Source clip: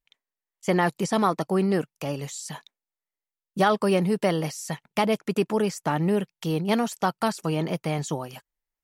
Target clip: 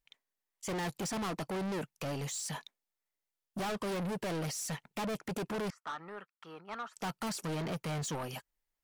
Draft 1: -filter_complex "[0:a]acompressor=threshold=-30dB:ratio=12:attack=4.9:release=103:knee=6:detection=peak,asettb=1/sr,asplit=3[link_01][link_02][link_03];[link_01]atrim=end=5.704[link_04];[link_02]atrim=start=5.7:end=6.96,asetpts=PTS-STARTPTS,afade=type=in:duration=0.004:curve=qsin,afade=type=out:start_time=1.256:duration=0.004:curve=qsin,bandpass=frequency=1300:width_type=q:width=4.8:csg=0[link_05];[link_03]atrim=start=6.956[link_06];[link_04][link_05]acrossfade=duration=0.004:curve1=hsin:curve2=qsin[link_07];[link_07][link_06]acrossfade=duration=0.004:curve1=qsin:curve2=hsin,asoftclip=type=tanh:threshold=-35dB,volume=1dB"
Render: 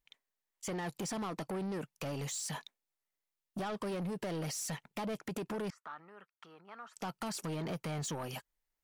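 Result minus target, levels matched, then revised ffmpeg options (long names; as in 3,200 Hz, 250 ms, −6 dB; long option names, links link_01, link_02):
downward compressor: peak gain reduction +15 dB
-filter_complex "[0:a]asettb=1/sr,asplit=3[link_01][link_02][link_03];[link_01]atrim=end=5.704[link_04];[link_02]atrim=start=5.7:end=6.96,asetpts=PTS-STARTPTS,afade=type=in:duration=0.004:curve=qsin,afade=type=out:start_time=1.256:duration=0.004:curve=qsin,bandpass=frequency=1300:width_type=q:width=4.8:csg=0[link_05];[link_03]atrim=start=6.956[link_06];[link_04][link_05]acrossfade=duration=0.004:curve1=hsin:curve2=qsin[link_07];[link_07][link_06]acrossfade=duration=0.004:curve1=qsin:curve2=hsin,asoftclip=type=tanh:threshold=-35dB,volume=1dB"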